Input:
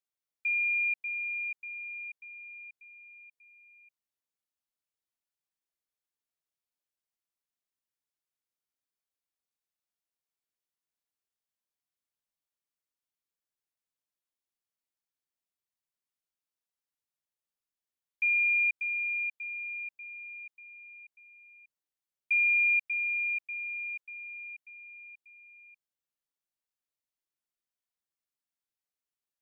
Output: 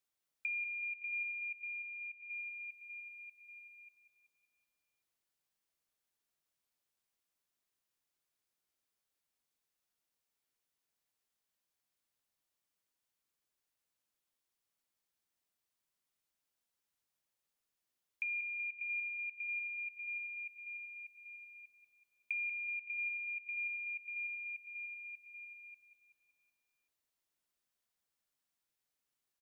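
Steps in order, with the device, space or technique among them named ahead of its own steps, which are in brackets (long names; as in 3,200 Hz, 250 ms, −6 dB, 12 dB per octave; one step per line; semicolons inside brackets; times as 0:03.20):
serial compression, peaks first (downward compressor, threshold −37 dBFS, peak gain reduction 12 dB; downward compressor 2 to 1, threshold −44 dBFS, peak gain reduction 6 dB)
0:01.61–0:02.30: high-frequency loss of the air 240 metres
repeating echo 189 ms, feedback 53%, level −9 dB
level +4 dB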